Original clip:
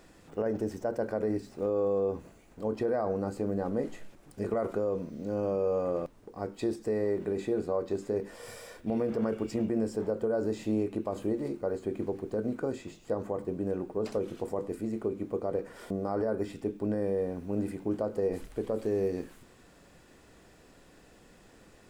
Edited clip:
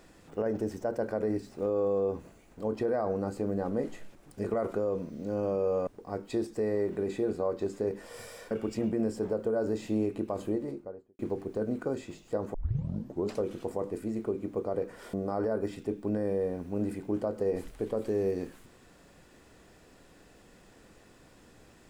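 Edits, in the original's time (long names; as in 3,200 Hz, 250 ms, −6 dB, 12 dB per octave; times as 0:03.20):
0:05.87–0:06.16: remove
0:08.80–0:09.28: remove
0:11.19–0:11.96: fade out and dull
0:13.31: tape start 0.77 s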